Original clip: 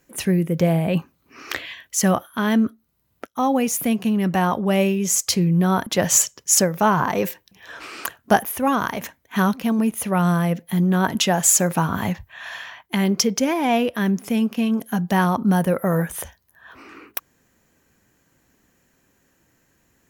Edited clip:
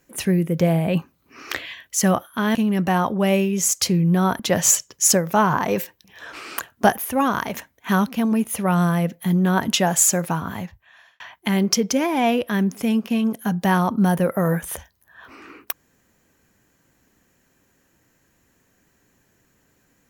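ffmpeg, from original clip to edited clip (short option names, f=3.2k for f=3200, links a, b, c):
-filter_complex "[0:a]asplit=3[a][b][c];[a]atrim=end=2.552[d];[b]atrim=start=4.018:end=12.67,asetpts=PTS-STARTPTS,afade=t=out:st=7.362:d=1.29[e];[c]atrim=start=12.67,asetpts=PTS-STARTPTS,afade=t=in:d=0.004:c=hsin[f];[e][f]concat=n=2:v=0:a=1[g];[d][g]acrossfade=d=0.004:c1=hsin:c2=hsin"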